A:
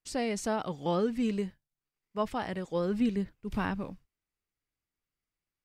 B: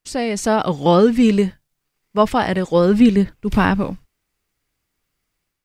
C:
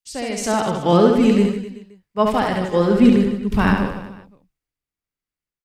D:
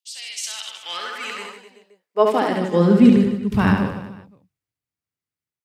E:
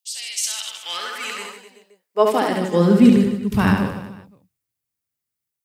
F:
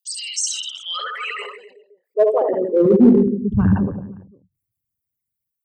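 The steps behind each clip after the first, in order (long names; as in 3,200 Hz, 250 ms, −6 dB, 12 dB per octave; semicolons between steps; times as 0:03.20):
automatic gain control gain up to 7 dB; level +9 dB
on a send: reverse bouncing-ball delay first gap 70 ms, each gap 1.2×, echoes 5; on the sum: multiband upward and downward expander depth 40%; level −3 dB
high-pass filter sweep 3,200 Hz → 100 Hz, 0:00.66–0:03.29; level −2 dB
high-shelf EQ 6,900 Hz +12 dB
spectral envelope exaggerated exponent 3; in parallel at −9 dB: hard clipping −12 dBFS, distortion −11 dB; on the sum: level −1 dB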